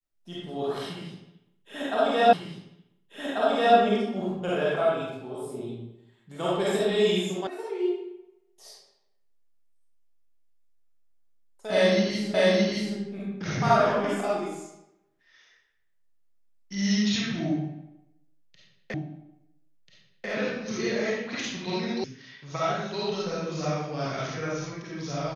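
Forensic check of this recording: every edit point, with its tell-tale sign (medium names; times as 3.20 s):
2.33 s: repeat of the last 1.44 s
7.47 s: sound stops dead
12.34 s: repeat of the last 0.62 s
18.94 s: repeat of the last 1.34 s
22.04 s: sound stops dead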